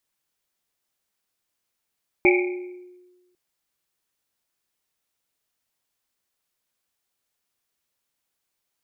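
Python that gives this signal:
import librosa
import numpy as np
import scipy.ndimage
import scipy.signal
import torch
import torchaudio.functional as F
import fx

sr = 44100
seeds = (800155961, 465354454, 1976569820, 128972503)

y = fx.risset_drum(sr, seeds[0], length_s=1.1, hz=360.0, decay_s=1.31, noise_hz=2300.0, noise_width_hz=290.0, noise_pct=35)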